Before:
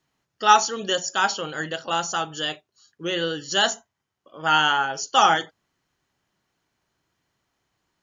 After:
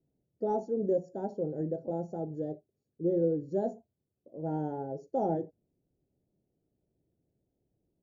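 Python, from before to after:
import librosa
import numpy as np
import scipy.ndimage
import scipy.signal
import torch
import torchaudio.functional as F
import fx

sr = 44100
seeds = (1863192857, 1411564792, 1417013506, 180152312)

y = scipy.signal.sosfilt(scipy.signal.cheby2(4, 40, 1100.0, 'lowpass', fs=sr, output='sos'), x)
y = F.gain(torch.from_numpy(y), 1.0).numpy()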